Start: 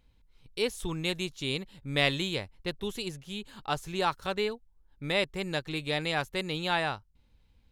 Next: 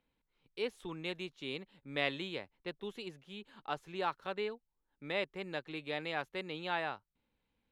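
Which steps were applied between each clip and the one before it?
three-band isolator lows -17 dB, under 180 Hz, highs -15 dB, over 3600 Hz; gain -6.5 dB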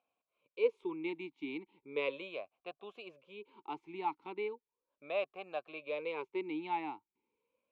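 vowel sweep a-u 0.37 Hz; gain +10.5 dB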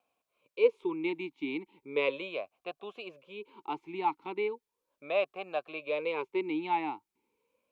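vibrato 0.37 Hz 5.7 cents; gain +6 dB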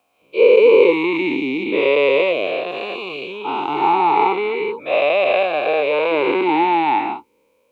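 spectral dilation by 0.48 s; gain +8 dB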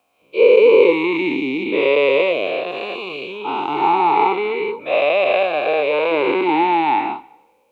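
Schroeder reverb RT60 1 s, combs from 30 ms, DRR 19 dB

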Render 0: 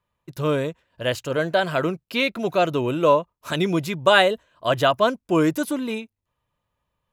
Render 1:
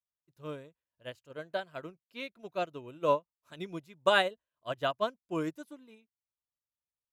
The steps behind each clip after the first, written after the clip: upward expander 2.5:1, over -28 dBFS; gain -7.5 dB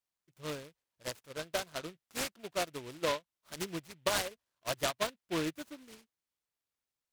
bell 4000 Hz +8.5 dB 2.3 oct; compressor 8:1, threshold -28 dBFS, peak gain reduction 12 dB; noise-modulated delay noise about 2300 Hz, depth 0.11 ms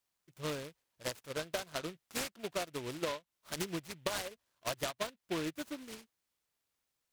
compressor 6:1, threshold -40 dBFS, peak gain reduction 13.5 dB; gain +6 dB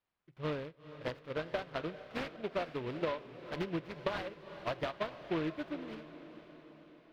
air absorption 350 m; diffused feedback echo 0.461 s, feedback 57%, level -13 dB; reverb RT60 0.45 s, pre-delay 5 ms, DRR 18.5 dB; gain +3 dB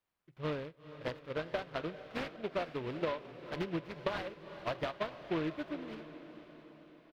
echo 0.683 s -21.5 dB

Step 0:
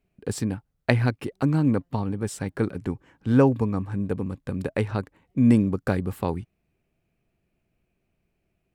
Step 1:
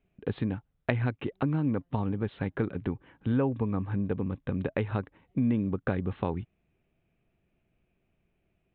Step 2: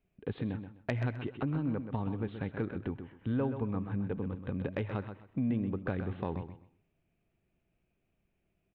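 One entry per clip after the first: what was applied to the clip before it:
steep low-pass 3800 Hz 96 dB/oct; compressor 3:1, threshold -26 dBFS, peak gain reduction 10 dB
soft clip -15.5 dBFS, distortion -26 dB; feedback echo 0.128 s, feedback 24%, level -9 dB; on a send at -22 dB: reverb RT60 0.70 s, pre-delay 40 ms; on the sum: gain -4.5 dB

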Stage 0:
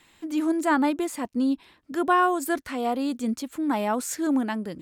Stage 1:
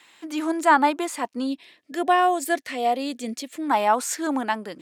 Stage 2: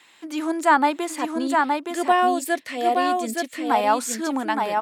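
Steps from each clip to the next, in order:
weighting filter A; spectral gain 1.47–3.62, 750–1700 Hz -10 dB; dynamic EQ 860 Hz, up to +5 dB, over -40 dBFS, Q 2; gain +4.5 dB
echo 0.869 s -3.5 dB

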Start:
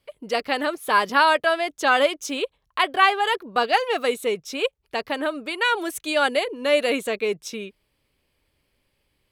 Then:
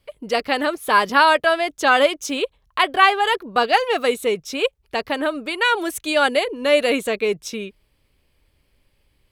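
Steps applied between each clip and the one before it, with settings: low shelf 84 Hz +10.5 dB; gain +3 dB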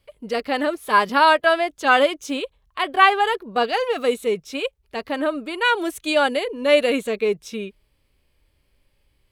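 harmonic-percussive split harmonic +8 dB; gain -7.5 dB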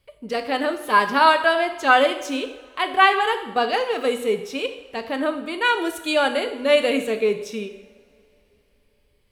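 two-slope reverb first 0.8 s, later 3.5 s, from -22 dB, DRR 7 dB; gain -1 dB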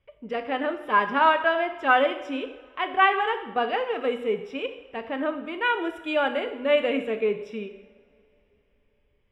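polynomial smoothing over 25 samples; gain -4 dB

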